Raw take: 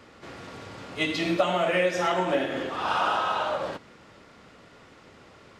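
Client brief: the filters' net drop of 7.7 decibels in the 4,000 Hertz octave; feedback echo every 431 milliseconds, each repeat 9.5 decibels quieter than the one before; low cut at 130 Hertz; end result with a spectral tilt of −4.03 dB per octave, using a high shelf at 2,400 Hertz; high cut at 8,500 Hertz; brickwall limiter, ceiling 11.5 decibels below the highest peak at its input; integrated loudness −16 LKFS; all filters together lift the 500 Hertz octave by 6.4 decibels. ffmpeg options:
ffmpeg -i in.wav -af "highpass=130,lowpass=8500,equalizer=frequency=500:width_type=o:gain=8,highshelf=frequency=2400:gain=-4,equalizer=frequency=4000:width_type=o:gain=-7.5,alimiter=limit=-17dB:level=0:latency=1,aecho=1:1:431|862|1293|1724:0.335|0.111|0.0365|0.012,volume=10dB" out.wav

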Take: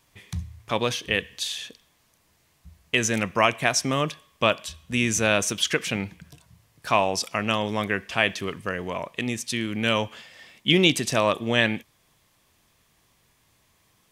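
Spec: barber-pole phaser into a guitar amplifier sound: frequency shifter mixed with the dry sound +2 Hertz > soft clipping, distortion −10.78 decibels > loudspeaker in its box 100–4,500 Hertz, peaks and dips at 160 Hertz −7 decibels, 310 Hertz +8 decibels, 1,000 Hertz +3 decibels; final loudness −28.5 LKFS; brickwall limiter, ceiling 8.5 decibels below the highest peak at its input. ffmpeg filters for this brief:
ffmpeg -i in.wav -filter_complex "[0:a]alimiter=limit=-12.5dB:level=0:latency=1,asplit=2[link_01][link_02];[link_02]afreqshift=2[link_03];[link_01][link_03]amix=inputs=2:normalize=1,asoftclip=threshold=-25.5dB,highpass=100,equalizer=frequency=160:width_type=q:width=4:gain=-7,equalizer=frequency=310:width_type=q:width=4:gain=8,equalizer=frequency=1000:width_type=q:width=4:gain=3,lowpass=frequency=4500:width=0.5412,lowpass=frequency=4500:width=1.3066,volume=5dB" out.wav

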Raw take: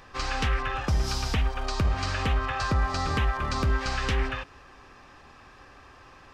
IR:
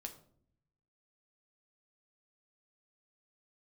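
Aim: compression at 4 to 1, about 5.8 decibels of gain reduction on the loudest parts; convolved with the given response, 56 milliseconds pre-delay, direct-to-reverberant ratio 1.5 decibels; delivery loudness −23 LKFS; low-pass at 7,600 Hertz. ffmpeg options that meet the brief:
-filter_complex "[0:a]lowpass=7600,acompressor=threshold=-27dB:ratio=4,asplit=2[link_01][link_02];[1:a]atrim=start_sample=2205,adelay=56[link_03];[link_02][link_03]afir=irnorm=-1:irlink=0,volume=2.5dB[link_04];[link_01][link_04]amix=inputs=2:normalize=0,volume=6.5dB"

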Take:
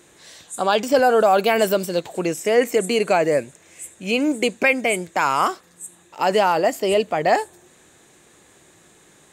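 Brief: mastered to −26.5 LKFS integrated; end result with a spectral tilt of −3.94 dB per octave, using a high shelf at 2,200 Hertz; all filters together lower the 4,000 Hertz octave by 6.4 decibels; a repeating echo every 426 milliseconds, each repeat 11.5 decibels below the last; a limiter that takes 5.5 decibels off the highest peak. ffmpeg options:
ffmpeg -i in.wav -af "highshelf=frequency=2200:gain=-6.5,equalizer=frequency=4000:width_type=o:gain=-3,alimiter=limit=-11.5dB:level=0:latency=1,aecho=1:1:426|852|1278:0.266|0.0718|0.0194,volume=-4dB" out.wav

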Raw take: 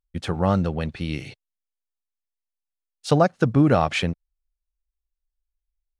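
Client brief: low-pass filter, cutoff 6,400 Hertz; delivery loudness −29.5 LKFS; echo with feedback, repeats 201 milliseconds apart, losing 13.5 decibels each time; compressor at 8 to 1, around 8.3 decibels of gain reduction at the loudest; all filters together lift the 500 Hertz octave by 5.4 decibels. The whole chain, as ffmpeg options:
ffmpeg -i in.wav -af "lowpass=6400,equalizer=frequency=500:width_type=o:gain=6.5,acompressor=threshold=-18dB:ratio=8,aecho=1:1:201|402:0.211|0.0444,volume=-4dB" out.wav

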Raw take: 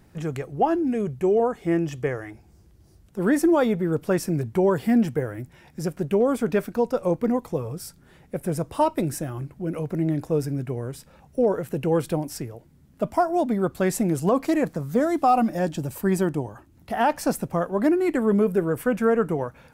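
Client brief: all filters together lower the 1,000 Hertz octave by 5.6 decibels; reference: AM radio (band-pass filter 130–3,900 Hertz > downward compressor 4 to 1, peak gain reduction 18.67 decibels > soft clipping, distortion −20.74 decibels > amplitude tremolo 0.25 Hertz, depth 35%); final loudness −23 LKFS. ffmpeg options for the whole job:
ffmpeg -i in.wav -af "highpass=130,lowpass=3900,equalizer=frequency=1000:width_type=o:gain=-8.5,acompressor=threshold=-39dB:ratio=4,asoftclip=threshold=-30.5dB,tremolo=f=0.25:d=0.35,volume=20.5dB" out.wav

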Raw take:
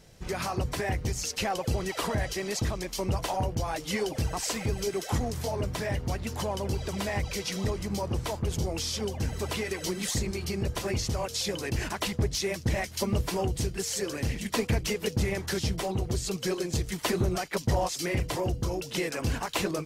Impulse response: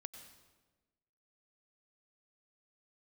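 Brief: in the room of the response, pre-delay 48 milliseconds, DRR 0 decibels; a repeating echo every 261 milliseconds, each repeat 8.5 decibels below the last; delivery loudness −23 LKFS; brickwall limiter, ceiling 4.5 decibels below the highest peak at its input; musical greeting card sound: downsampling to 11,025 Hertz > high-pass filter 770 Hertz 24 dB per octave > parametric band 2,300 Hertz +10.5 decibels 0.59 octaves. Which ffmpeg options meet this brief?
-filter_complex "[0:a]alimiter=limit=-21dB:level=0:latency=1,aecho=1:1:261|522|783|1044:0.376|0.143|0.0543|0.0206,asplit=2[link_01][link_02];[1:a]atrim=start_sample=2205,adelay=48[link_03];[link_02][link_03]afir=irnorm=-1:irlink=0,volume=4.5dB[link_04];[link_01][link_04]amix=inputs=2:normalize=0,aresample=11025,aresample=44100,highpass=frequency=770:width=0.5412,highpass=frequency=770:width=1.3066,equalizer=frequency=2300:width_type=o:width=0.59:gain=10.5,volume=7dB"

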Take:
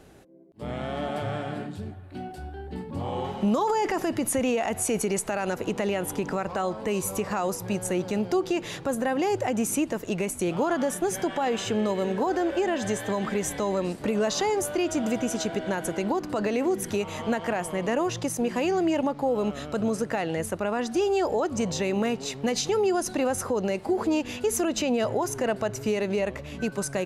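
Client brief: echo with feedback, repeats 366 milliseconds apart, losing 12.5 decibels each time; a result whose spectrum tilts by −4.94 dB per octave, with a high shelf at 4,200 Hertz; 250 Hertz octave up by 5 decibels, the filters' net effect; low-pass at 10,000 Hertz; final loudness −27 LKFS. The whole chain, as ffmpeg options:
ffmpeg -i in.wav -af "lowpass=10000,equalizer=frequency=250:width_type=o:gain=6.5,highshelf=frequency=4200:gain=3.5,aecho=1:1:366|732|1098:0.237|0.0569|0.0137,volume=-3dB" out.wav

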